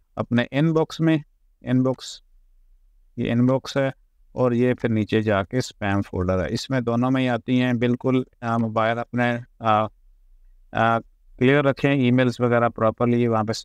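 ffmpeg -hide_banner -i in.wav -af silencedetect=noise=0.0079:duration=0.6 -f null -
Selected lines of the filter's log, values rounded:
silence_start: 2.18
silence_end: 3.17 | silence_duration: 0.99
silence_start: 9.88
silence_end: 10.73 | silence_duration: 0.85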